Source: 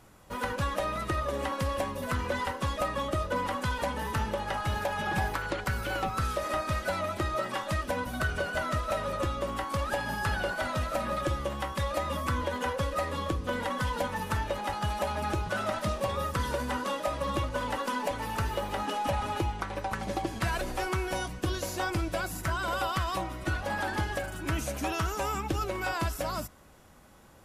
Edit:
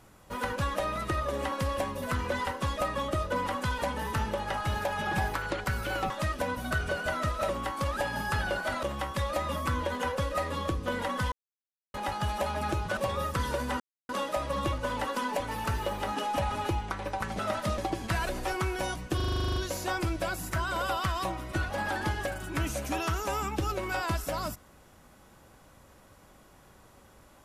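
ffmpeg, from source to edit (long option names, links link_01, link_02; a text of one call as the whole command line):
ffmpeg -i in.wav -filter_complex "[0:a]asplit=20[link_01][link_02][link_03][link_04][link_05][link_06][link_07][link_08][link_09][link_10][link_11][link_12][link_13][link_14][link_15][link_16][link_17][link_18][link_19][link_20];[link_01]atrim=end=6.102[link_21];[link_02]atrim=start=7.588:end=8.982[link_22];[link_03]atrim=start=9.418:end=10.762[link_23];[link_04]atrim=start=11.438:end=13.93,asetpts=PTS-STARTPTS,afade=type=out:start_time=2.488:duration=0.004:curve=hsin[link_24];[link_05]atrim=start=13.93:end=14.55,asetpts=PTS-STARTPTS,volume=0[link_25];[link_06]atrim=start=14.55:end=15.582,asetpts=PTS-STARTPTS,afade=type=in:duration=0.004:curve=hsin[link_26];[link_07]atrim=start=15.968:end=16.8,asetpts=PTS-STARTPTS,afade=type=out:start_time=0.828:duration=0.004:curve=hsin,apad=pad_dur=0.29[link_27];[link_08]atrim=start=16.8:end=20.102,asetpts=PTS-STARTPTS,afade=type=in:duration=0.004:curve=hsin[link_28];[link_09]atrim=start=15.578:end=15.972[link_29];[link_10]atrim=start=20.098:end=21.522[link_30];[link_11]atrim=start=21.478:end=21.522[link_31];[link_12]atrim=start=21.478:end=21.522[link_32];[link_13]atrim=start=21.478:end=21.522[link_33];[link_14]atrim=start=21.478:end=21.522[link_34];[link_15]atrim=start=21.478:end=21.522[link_35];[link_16]atrim=start=21.478:end=21.522[link_36];[link_17]atrim=start=21.478:end=21.522[link_37];[link_18]atrim=start=21.478:end=21.522[link_38];[link_19]atrim=start=21.478:end=21.522[link_39];[link_20]atrim=start=21.478[link_40];[link_21][link_22]acrossfade=duration=0.004:curve1=hsin:curve2=hsin[link_41];[link_41][link_23]acrossfade=duration=0.004:curve1=hsin:curve2=hsin[link_42];[link_24][link_25][link_26]concat=n=3:v=0:a=1[link_43];[link_42][link_43]acrossfade=duration=0.004:curve1=hsin:curve2=hsin[link_44];[link_27][link_28]concat=n=2:v=0:a=1[link_45];[link_44][link_45]acrossfade=duration=0.004:curve1=hsin:curve2=hsin[link_46];[link_46][link_29]acrossfade=duration=0.004:curve1=hsin:curve2=hsin[link_47];[link_47][link_30]acrossfade=duration=0.004:curve1=hsin:curve2=hsin[link_48];[link_48][link_31]acrossfade=duration=0.004:curve1=hsin:curve2=hsin[link_49];[link_49][link_32]acrossfade=duration=0.004:curve1=hsin:curve2=hsin[link_50];[link_50][link_33]acrossfade=duration=0.004:curve1=hsin:curve2=hsin[link_51];[link_51][link_34]acrossfade=duration=0.004:curve1=hsin:curve2=hsin[link_52];[link_52][link_35]acrossfade=duration=0.004:curve1=hsin:curve2=hsin[link_53];[link_53][link_36]acrossfade=duration=0.004:curve1=hsin:curve2=hsin[link_54];[link_54][link_37]acrossfade=duration=0.004:curve1=hsin:curve2=hsin[link_55];[link_55][link_38]acrossfade=duration=0.004:curve1=hsin:curve2=hsin[link_56];[link_56][link_39]acrossfade=duration=0.004:curve1=hsin:curve2=hsin[link_57];[link_57][link_40]acrossfade=duration=0.004:curve1=hsin:curve2=hsin" out.wav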